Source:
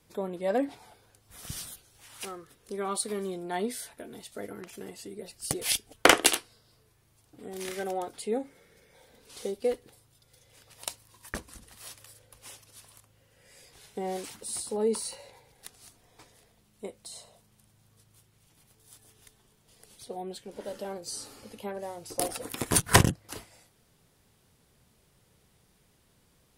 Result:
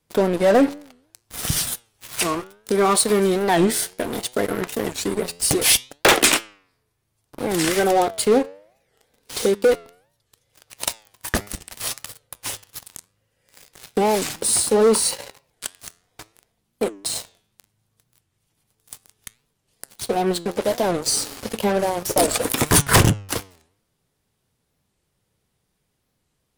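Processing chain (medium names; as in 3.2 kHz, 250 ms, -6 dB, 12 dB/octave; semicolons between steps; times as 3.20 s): in parallel at +2 dB: compression 10:1, threshold -42 dBFS, peak gain reduction 29 dB; on the sum: waveshaping leveller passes 5; flange 0.66 Hz, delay 6.2 ms, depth 5.8 ms, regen +89%; warped record 45 rpm, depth 250 cents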